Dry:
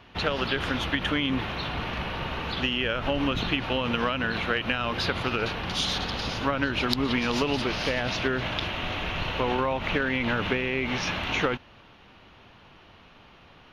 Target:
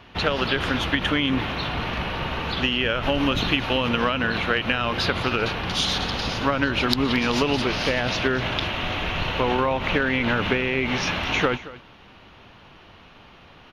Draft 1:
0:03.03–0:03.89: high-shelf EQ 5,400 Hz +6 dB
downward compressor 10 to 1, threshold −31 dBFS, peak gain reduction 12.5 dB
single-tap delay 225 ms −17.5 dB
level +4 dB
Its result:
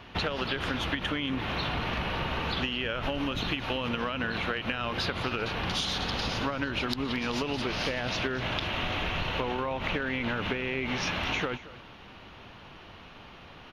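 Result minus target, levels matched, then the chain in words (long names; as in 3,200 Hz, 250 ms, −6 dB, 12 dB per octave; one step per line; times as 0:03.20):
downward compressor: peak gain reduction +12.5 dB
0:03.03–0:03.89: high-shelf EQ 5,400 Hz +6 dB
single-tap delay 225 ms −17.5 dB
level +4 dB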